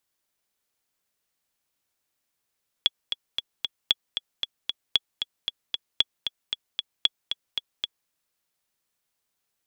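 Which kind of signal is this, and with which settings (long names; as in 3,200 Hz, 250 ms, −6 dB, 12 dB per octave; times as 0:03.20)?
click track 229 BPM, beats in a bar 4, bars 5, 3,370 Hz, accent 8 dB −5.5 dBFS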